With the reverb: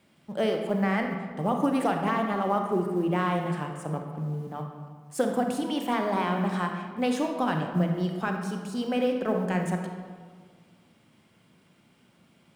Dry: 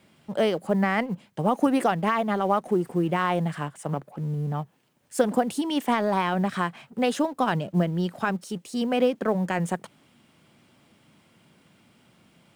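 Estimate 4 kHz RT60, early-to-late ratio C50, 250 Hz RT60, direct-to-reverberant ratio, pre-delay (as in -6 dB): 0.95 s, 4.5 dB, 1.9 s, 3.0 dB, 29 ms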